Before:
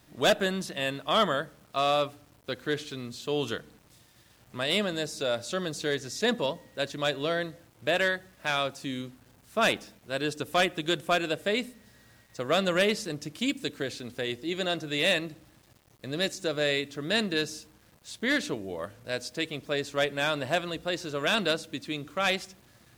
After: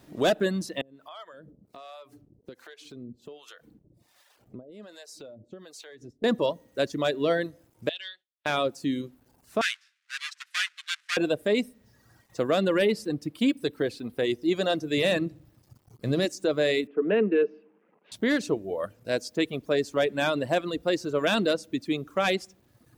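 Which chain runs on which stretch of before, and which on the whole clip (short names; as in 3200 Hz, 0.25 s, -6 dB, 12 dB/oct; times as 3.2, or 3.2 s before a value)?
0.81–6.24 compressor 12:1, threshold -40 dBFS + harmonic tremolo 1.3 Hz, depth 100%, crossover 560 Hz
7.89–8.46 band-pass 3400 Hz, Q 4.5 + expander -58 dBFS
9.61–11.17 half-waves squared off + steep high-pass 1500 Hz + air absorption 84 m
12.65–14.21 bell 6400 Hz -8.5 dB 0.58 oct + notch 610 Hz, Q 20
14.97–16.25 bell 110 Hz +10.5 dB 1.3 oct + notches 50/100/150/200/250/300/350/400 Hz
16.87–18.12 Chebyshev band-pass 180–2700 Hz, order 4 + bell 440 Hz +11 dB 0.22 oct
whole clip: reverb removal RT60 1.1 s; bell 340 Hz +9 dB 2.4 oct; limiter -15 dBFS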